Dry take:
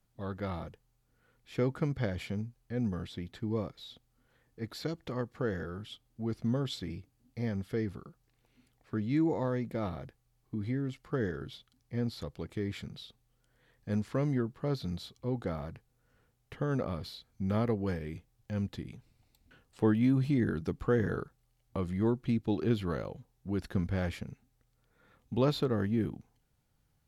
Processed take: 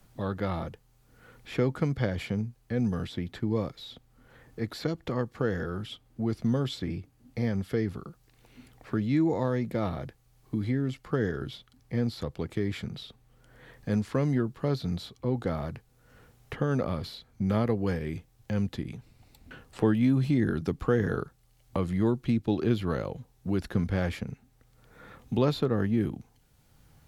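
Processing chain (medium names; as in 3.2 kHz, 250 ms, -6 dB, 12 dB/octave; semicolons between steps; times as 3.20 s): three bands compressed up and down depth 40%; trim +4.5 dB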